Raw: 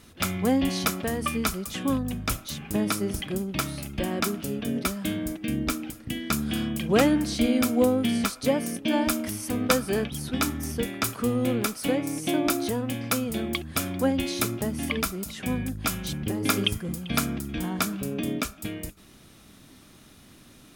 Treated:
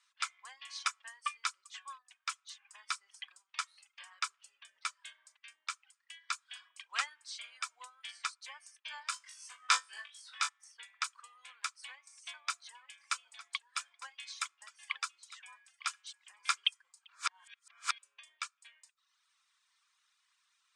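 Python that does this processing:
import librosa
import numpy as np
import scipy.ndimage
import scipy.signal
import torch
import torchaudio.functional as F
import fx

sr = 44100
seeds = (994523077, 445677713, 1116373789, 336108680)

y = fx.room_flutter(x, sr, wall_m=3.4, rt60_s=0.42, at=(9.1, 10.49))
y = fx.echo_single(y, sr, ms=907, db=-11.0, at=(12.68, 16.58), fade=0.02)
y = fx.edit(y, sr, fx.reverse_span(start_s=17.09, length_s=0.9), tone=tone)
y = fx.dereverb_blind(y, sr, rt60_s=0.87)
y = scipy.signal.sosfilt(scipy.signal.cheby1(4, 1.0, [1000.0, 8500.0], 'bandpass', fs=sr, output='sos'), y)
y = fx.upward_expand(y, sr, threshold_db=-46.0, expansion=1.5)
y = y * librosa.db_to_amplitude(-2.5)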